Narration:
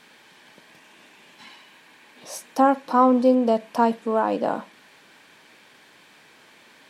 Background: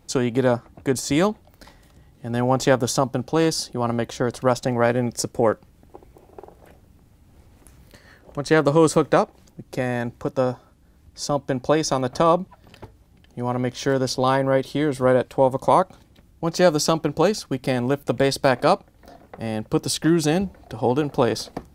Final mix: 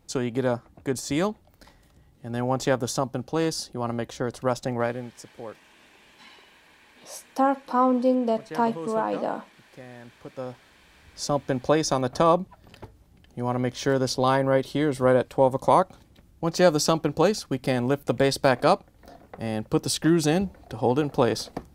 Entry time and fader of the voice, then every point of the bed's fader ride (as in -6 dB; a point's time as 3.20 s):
4.80 s, -4.0 dB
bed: 4.80 s -5.5 dB
5.21 s -19.5 dB
9.99 s -19.5 dB
11.23 s -2 dB